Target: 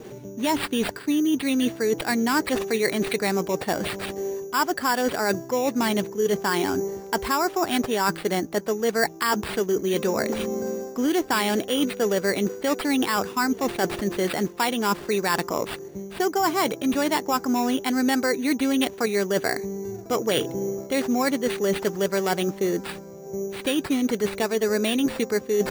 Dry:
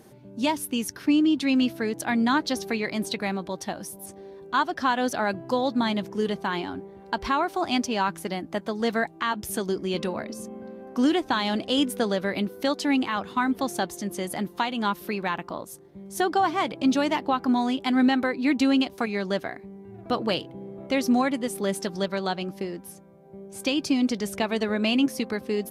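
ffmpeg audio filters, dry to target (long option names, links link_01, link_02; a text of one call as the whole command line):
ffmpeg -i in.wav -af "equalizer=frequency=430:width=3:gain=9,areverse,acompressor=threshold=-30dB:ratio=5,areverse,adynamicequalizer=threshold=0.00355:dfrequency=1700:dqfactor=1.4:tfrequency=1700:tqfactor=1.4:attack=5:release=100:ratio=0.375:range=2:mode=boostabove:tftype=bell,acrusher=samples=7:mix=1:aa=0.000001,volume=8.5dB" out.wav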